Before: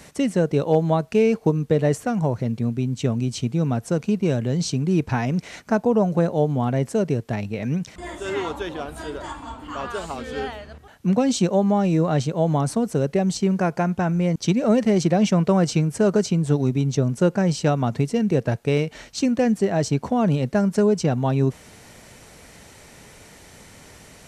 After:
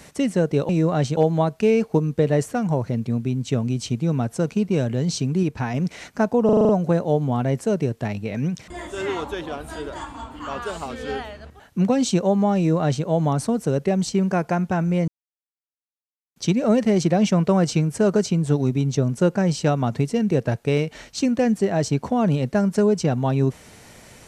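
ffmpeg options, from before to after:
-filter_complex "[0:a]asplit=12[a][b][c][d][e][f][g][h][i][j][k][l];[a]atrim=end=0.692[m];[b]atrim=start=11.848:end=12.332[n];[c]atrim=start=0.688:end=4.952[o];[d]atrim=start=4.948:end=5.262,asetpts=PTS-STARTPTS,volume=-3dB[p];[e]atrim=start=5.258:end=6.012[q];[f]atrim=start=5.968:end=6.012[r];[g]atrim=start=5.968:end=6.012[s];[h]atrim=start=5.968:end=6.012[t];[i]atrim=start=5.968:end=6.012[u];[j]atrim=start=5.968:end=6.012[v];[k]atrim=start=5.968:end=14.36,asetpts=PTS-STARTPTS,afade=t=out:st=8.388:d=0.004:c=hsin,apad=pad_dur=1.28[w];[l]atrim=start=14.36,asetpts=PTS-STARTPTS,afade=t=in:d=0.004:c=hsin[x];[m][n]acrossfade=d=0.004:c1=hsin:c2=hsin[y];[y][o]acrossfade=d=0.004:c1=hsin:c2=hsin[z];[z][p]acrossfade=d=0.004:c1=hsin:c2=hsin[aa];[aa][q]acrossfade=d=0.004:c1=hsin:c2=hsin[ab];[ab][r]acrossfade=d=0.004:c1=hsin:c2=hsin[ac];[ac][s]acrossfade=d=0.004:c1=hsin:c2=hsin[ad];[ad][t]acrossfade=d=0.004:c1=hsin:c2=hsin[ae];[ae][u]acrossfade=d=0.004:c1=hsin:c2=hsin[af];[af][v]acrossfade=d=0.004:c1=hsin:c2=hsin[ag];[w][x]concat=n=2:v=0:a=1[ah];[ag][ah]acrossfade=d=0.004:c1=hsin:c2=hsin"

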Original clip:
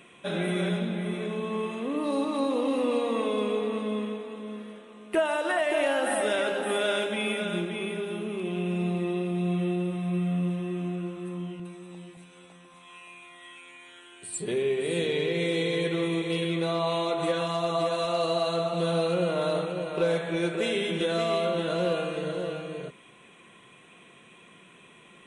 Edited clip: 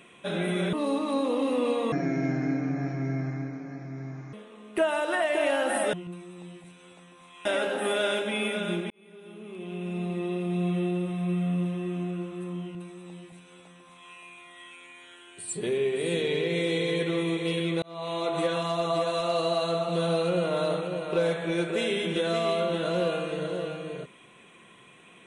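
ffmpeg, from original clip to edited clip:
-filter_complex "[0:a]asplit=8[a][b][c][d][e][f][g][h];[a]atrim=end=0.732[i];[b]atrim=start=1.988:end=3.184[j];[c]atrim=start=3.18:end=4.7,asetpts=PTS-STARTPTS,asetrate=27783,aresample=44100[k];[d]atrim=start=4.696:end=6.302[l];[e]atrim=start=11.458:end=12.982[m];[f]atrim=start=6.298:end=7.75,asetpts=PTS-STARTPTS,afade=t=out:st=1.448:d=0.004:c=hsin[n];[g]atrim=start=7.75:end=16.67,asetpts=PTS-STARTPTS,afade=t=in:d=1.65,afade=t=out:st=8.916:d=0.004:c=hsin[o];[h]atrim=start=16.67,asetpts=PTS-STARTPTS,afade=t=in:d=0.48[p];[i][j]acrossfade=d=0.004:c1=hsin:c2=hsin[q];[q][k]acrossfade=d=0.004:c1=hsin:c2=hsin[r];[r][l]acrossfade=d=0.004:c1=hsin:c2=hsin[s];[s][m]acrossfade=d=0.004:c1=hsin:c2=hsin[t];[n][o][p]concat=n=3:v=0:a=1[u];[t][u]acrossfade=d=0.004:c1=hsin:c2=hsin"

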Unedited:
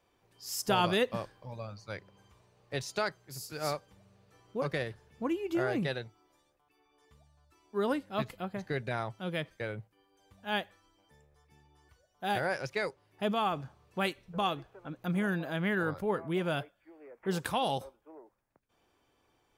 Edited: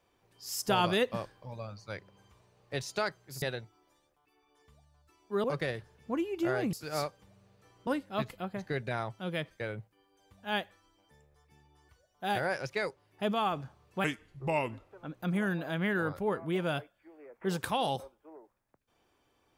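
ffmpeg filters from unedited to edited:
-filter_complex "[0:a]asplit=7[a][b][c][d][e][f][g];[a]atrim=end=3.422[h];[b]atrim=start=5.848:end=7.872[i];[c]atrim=start=4.558:end=5.852[j];[d]atrim=start=3.418:end=4.562[k];[e]atrim=start=7.868:end=14.044[l];[f]atrim=start=14.04:end=14.73,asetpts=PTS-STARTPTS,asetrate=34839,aresample=44100[m];[g]atrim=start=14.726[n];[h][i]acrossfade=d=0.004:c1=hsin:c2=hsin[o];[o][j]acrossfade=d=0.004:c1=hsin:c2=hsin[p];[p][k]acrossfade=d=0.004:c1=hsin:c2=hsin[q];[q][l]acrossfade=d=0.004:c1=hsin:c2=hsin[r];[r][m]acrossfade=d=0.004:c1=hsin:c2=hsin[s];[s][n]acrossfade=d=0.004:c1=hsin:c2=hsin"

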